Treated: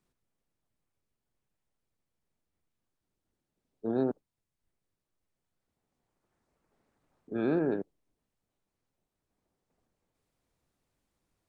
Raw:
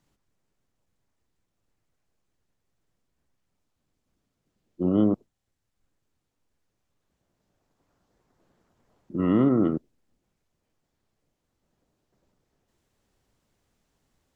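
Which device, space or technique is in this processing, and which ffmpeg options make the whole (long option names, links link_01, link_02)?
nightcore: -af "asetrate=55125,aresample=44100,volume=-7.5dB"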